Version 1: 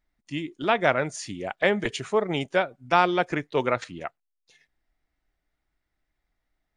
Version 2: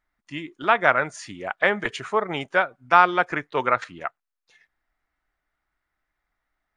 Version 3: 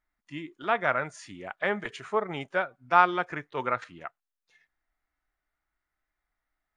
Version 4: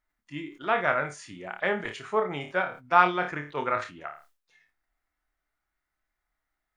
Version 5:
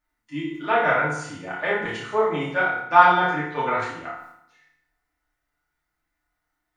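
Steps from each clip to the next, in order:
peaking EQ 1.3 kHz +12.5 dB 1.7 oct; trim -4.5 dB
harmonic-percussive split percussive -6 dB; trim -3.5 dB
flutter echo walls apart 4.7 m, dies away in 0.22 s; decay stretcher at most 140 dB/s
FDN reverb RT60 0.76 s, low-frequency decay 1.2×, high-frequency decay 0.85×, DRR -5.5 dB; trim -2 dB

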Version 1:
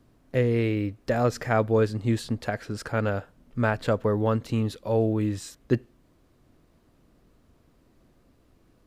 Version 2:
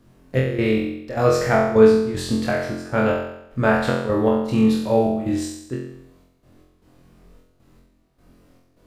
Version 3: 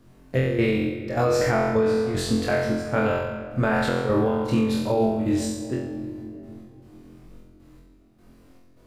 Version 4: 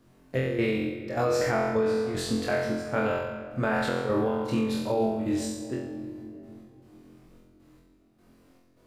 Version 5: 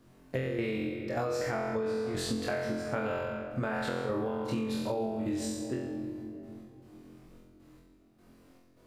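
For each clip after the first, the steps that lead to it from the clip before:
trance gate "xx.x..xx.x.x" 77 bpm -12 dB; on a send: flutter echo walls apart 3.9 m, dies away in 0.77 s; on the sum: trim +3.5 dB
peak limiter -12.5 dBFS, peak gain reduction 10.5 dB; on a send at -9 dB: reverberation RT60 3.3 s, pre-delay 3 ms
bass shelf 100 Hz -9 dB; trim -3.5 dB
compression, threshold -29 dBFS, peak gain reduction 8 dB

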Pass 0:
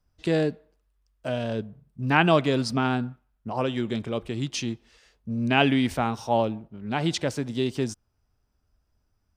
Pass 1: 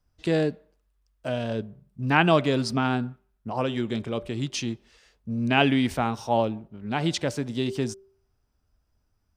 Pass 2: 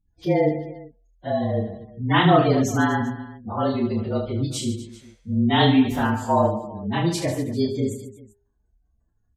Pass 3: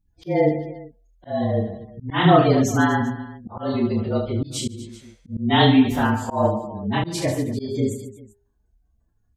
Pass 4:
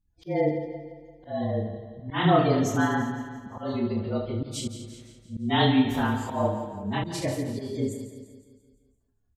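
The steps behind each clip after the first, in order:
de-hum 194.6 Hz, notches 3
frequency axis rescaled in octaves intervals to 109%; spectral gate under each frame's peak -25 dB strong; reverse bouncing-ball echo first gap 30 ms, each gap 1.5×, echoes 5; trim +4 dB
slow attack 160 ms; trim +2 dB
feedback delay 171 ms, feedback 53%, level -12 dB; trim -6 dB

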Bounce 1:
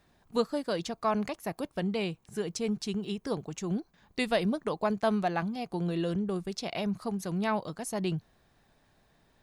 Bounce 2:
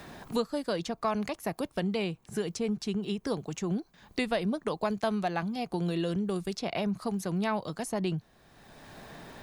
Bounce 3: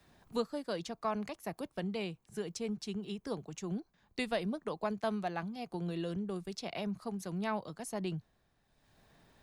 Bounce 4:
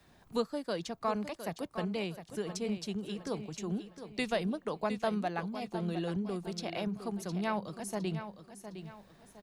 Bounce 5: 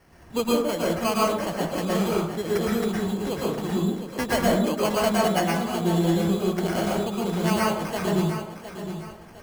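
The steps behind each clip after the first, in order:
three bands compressed up and down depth 70%
three bands expanded up and down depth 70%; trim -6.5 dB
feedback delay 710 ms, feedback 37%, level -10.5 dB; trim +2 dB
sample-and-hold 12×; plate-style reverb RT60 0.66 s, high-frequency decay 0.5×, pre-delay 100 ms, DRR -5 dB; trim +5.5 dB

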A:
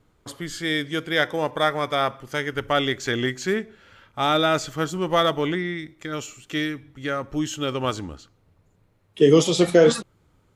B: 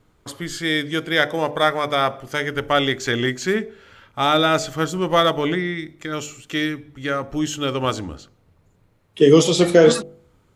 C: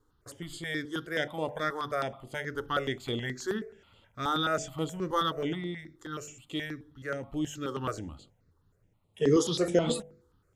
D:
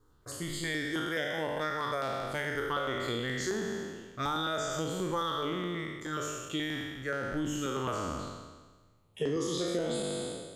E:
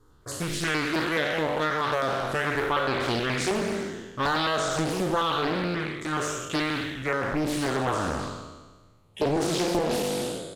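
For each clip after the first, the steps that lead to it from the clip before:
de-hum 49.43 Hz, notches 17; trim +3.5 dB
peaking EQ 2.3 kHz -5 dB 0.52 oct; stepped phaser 9.4 Hz 650–5700 Hz; trim -8.5 dB
spectral sustain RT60 1.35 s; compression 6:1, threshold -31 dBFS, peak gain reduction 13.5 dB; trim +1.5 dB
resampled via 32 kHz; loudspeaker Doppler distortion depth 0.74 ms; trim +7 dB

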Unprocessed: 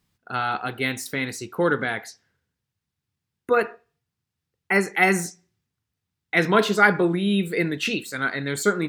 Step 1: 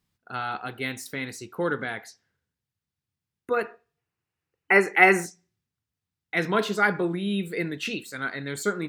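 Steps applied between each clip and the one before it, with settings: time-frequency box 3.98–5.25 s, 290–3000 Hz +8 dB; trim -5.5 dB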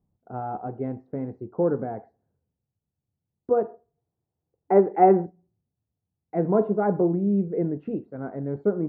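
Chebyshev low-pass 730 Hz, order 3; trim +5.5 dB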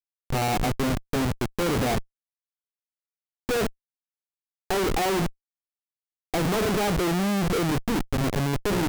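Schmitt trigger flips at -34 dBFS; trim +2.5 dB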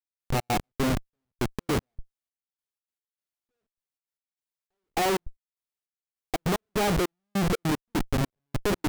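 trance gate "..xx.x..xxx." 151 bpm -60 dB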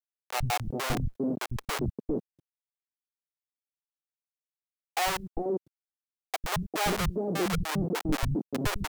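three bands offset in time highs, lows, mids 100/400 ms, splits 180/560 Hz; word length cut 12-bit, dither none

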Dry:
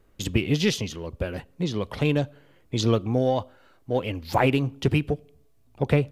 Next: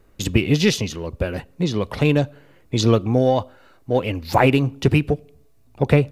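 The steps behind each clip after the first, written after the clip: band-stop 3.2 kHz, Q 14; trim +5.5 dB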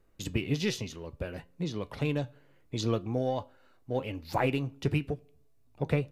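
flange 0.66 Hz, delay 5.7 ms, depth 2.5 ms, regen +80%; trim -8 dB

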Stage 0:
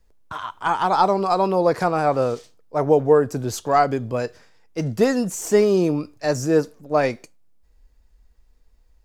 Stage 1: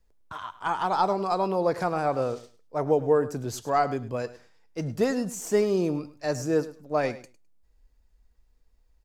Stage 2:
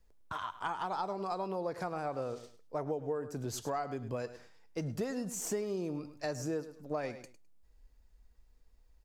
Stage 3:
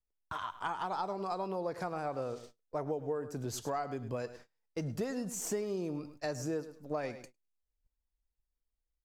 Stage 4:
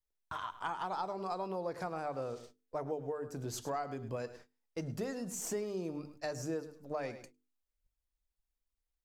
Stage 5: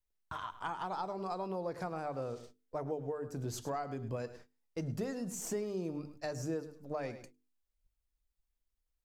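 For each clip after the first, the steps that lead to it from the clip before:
feedback delay 104 ms, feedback 16%, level -16 dB; trim -6.5 dB
compression 5:1, threshold -34 dBFS, peak gain reduction 15.5 dB
gate -52 dBFS, range -23 dB
hum notches 50/100/150/200/250/300/350/400/450 Hz; trim -1.5 dB
bass shelf 270 Hz +5.5 dB; trim -1.5 dB

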